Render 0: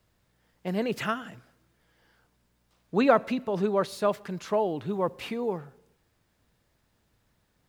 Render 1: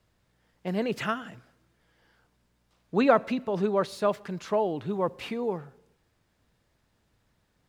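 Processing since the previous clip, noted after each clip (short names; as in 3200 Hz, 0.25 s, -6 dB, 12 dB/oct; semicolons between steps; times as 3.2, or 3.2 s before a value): high shelf 12000 Hz -9 dB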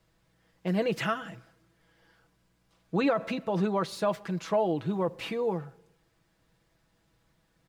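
comb 6.1 ms, depth 57%; limiter -17.5 dBFS, peak gain reduction 10.5 dB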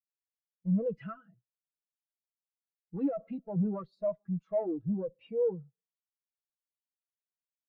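tube stage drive 31 dB, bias 0.5; spectral expander 2.5:1; gain +7.5 dB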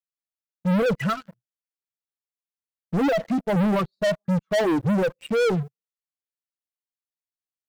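sample leveller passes 5; gain +3 dB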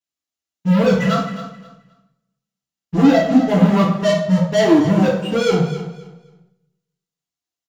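feedback echo 0.263 s, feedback 23%, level -13 dB; reverb RT60 0.60 s, pre-delay 3 ms, DRR -7 dB; gain -3.5 dB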